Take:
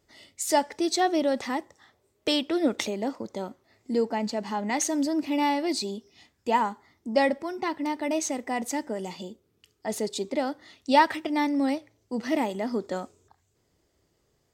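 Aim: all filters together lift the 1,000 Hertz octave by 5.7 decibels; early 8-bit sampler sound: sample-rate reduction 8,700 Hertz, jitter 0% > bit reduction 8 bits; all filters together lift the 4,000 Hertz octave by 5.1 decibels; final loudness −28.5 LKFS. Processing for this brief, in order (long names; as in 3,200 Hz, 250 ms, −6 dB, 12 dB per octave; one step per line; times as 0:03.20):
parametric band 1,000 Hz +6.5 dB
parametric band 4,000 Hz +6 dB
sample-rate reduction 8,700 Hz, jitter 0%
bit reduction 8 bits
level −4 dB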